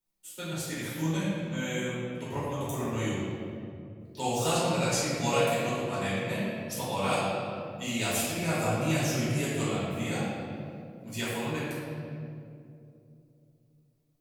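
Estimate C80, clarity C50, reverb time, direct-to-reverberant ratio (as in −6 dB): −1.0 dB, −3.5 dB, 2.7 s, −12.0 dB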